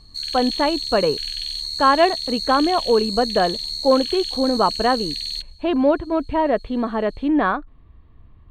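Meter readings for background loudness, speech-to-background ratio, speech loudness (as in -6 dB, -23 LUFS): -25.5 LUFS, 5.0 dB, -20.5 LUFS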